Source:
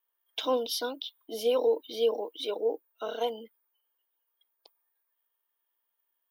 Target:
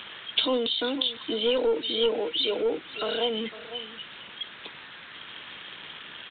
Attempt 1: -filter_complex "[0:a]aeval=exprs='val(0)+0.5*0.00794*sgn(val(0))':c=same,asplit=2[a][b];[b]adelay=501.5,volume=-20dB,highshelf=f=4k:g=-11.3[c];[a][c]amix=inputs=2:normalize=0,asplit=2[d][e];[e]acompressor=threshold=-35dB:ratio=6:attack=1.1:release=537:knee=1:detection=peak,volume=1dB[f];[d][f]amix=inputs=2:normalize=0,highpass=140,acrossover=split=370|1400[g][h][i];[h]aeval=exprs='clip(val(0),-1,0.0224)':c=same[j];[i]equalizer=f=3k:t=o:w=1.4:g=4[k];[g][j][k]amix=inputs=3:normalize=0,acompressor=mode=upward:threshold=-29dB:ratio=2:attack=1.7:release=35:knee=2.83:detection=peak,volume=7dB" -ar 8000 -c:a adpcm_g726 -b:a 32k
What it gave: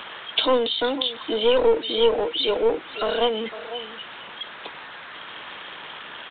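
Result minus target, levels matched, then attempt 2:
1000 Hz band +4.0 dB
-filter_complex "[0:a]aeval=exprs='val(0)+0.5*0.00794*sgn(val(0))':c=same,asplit=2[a][b];[b]adelay=501.5,volume=-20dB,highshelf=f=4k:g=-11.3[c];[a][c]amix=inputs=2:normalize=0,asplit=2[d][e];[e]acompressor=threshold=-35dB:ratio=6:attack=1.1:release=537:knee=1:detection=peak,volume=1dB[f];[d][f]amix=inputs=2:normalize=0,highpass=140,equalizer=f=800:t=o:w=2.3:g=-11.5,acrossover=split=370|1400[g][h][i];[h]aeval=exprs='clip(val(0),-1,0.0224)':c=same[j];[i]equalizer=f=3k:t=o:w=1.4:g=4[k];[g][j][k]amix=inputs=3:normalize=0,acompressor=mode=upward:threshold=-29dB:ratio=2:attack=1.7:release=35:knee=2.83:detection=peak,volume=7dB" -ar 8000 -c:a adpcm_g726 -b:a 32k

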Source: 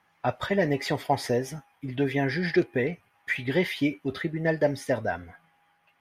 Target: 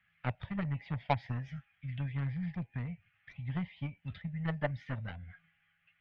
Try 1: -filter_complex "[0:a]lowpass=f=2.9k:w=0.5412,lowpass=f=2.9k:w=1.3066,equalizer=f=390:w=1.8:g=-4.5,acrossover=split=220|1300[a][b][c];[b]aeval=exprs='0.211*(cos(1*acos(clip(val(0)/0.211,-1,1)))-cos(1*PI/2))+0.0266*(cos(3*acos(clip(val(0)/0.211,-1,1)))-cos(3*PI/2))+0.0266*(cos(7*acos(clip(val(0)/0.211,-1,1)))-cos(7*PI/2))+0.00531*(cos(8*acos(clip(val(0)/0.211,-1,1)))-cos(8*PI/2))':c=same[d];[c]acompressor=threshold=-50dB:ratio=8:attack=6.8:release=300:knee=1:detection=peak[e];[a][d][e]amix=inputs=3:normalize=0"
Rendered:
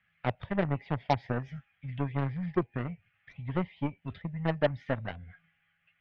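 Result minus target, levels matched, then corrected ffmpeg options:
500 Hz band +5.5 dB
-filter_complex "[0:a]lowpass=f=2.9k:w=0.5412,lowpass=f=2.9k:w=1.3066,equalizer=f=390:w=1.8:g=-16.5,acrossover=split=220|1300[a][b][c];[b]aeval=exprs='0.211*(cos(1*acos(clip(val(0)/0.211,-1,1)))-cos(1*PI/2))+0.0266*(cos(3*acos(clip(val(0)/0.211,-1,1)))-cos(3*PI/2))+0.0266*(cos(7*acos(clip(val(0)/0.211,-1,1)))-cos(7*PI/2))+0.00531*(cos(8*acos(clip(val(0)/0.211,-1,1)))-cos(8*PI/2))':c=same[d];[c]acompressor=threshold=-50dB:ratio=8:attack=6.8:release=300:knee=1:detection=peak[e];[a][d][e]amix=inputs=3:normalize=0"

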